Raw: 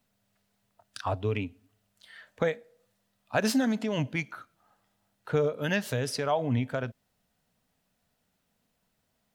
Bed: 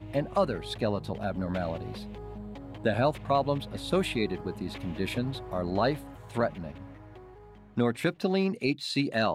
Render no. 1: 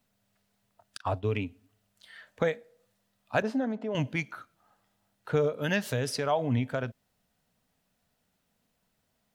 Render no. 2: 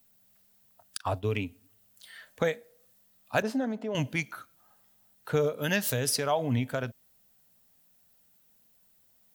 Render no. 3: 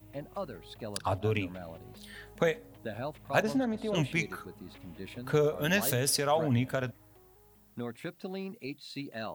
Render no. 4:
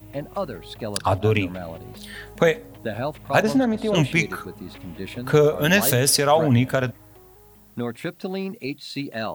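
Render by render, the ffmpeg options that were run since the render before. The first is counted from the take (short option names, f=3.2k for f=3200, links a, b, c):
-filter_complex "[0:a]asettb=1/sr,asplit=3[a][b][c];[a]atrim=end=0.974[d];[b]atrim=start=0.97:end=1.41,asetpts=PTS-STARTPTS,afade=t=in:d=0.004:c=qsin,afade=t=out:st=0.436:d=0.004:c=qsin,agate=range=-33dB:threshold=-36dB:ratio=3:release=100:detection=peak[e];[c]atrim=start=1.406[f];[d][e]acrossfade=d=0.004:c1=hsin:c2=qsin[g];[g][f]acrossfade=d=0.004:c1=qsin:c2=hsin,asettb=1/sr,asplit=3[h][i][j];[h]atrim=end=3.424[k];[i]atrim=start=3.42:end=3.95,asetpts=PTS-STARTPTS,afade=t=in:d=0.004:c=qsin,afade=t=out:st=0.526:d=0.004:c=qsin,bandpass=f=510:t=q:w=0.86[l];[j]atrim=start=3.946[m];[k][l]acrossfade=d=0.004:c1=hsin:c2=qsin[n];[n][m]acrossfade=d=0.004:c1=qsin:c2=hsin"
-af "aemphasis=mode=production:type=50fm"
-filter_complex "[1:a]volume=-12dB[a];[0:a][a]amix=inputs=2:normalize=0"
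-af "volume=10dB,alimiter=limit=-3dB:level=0:latency=1"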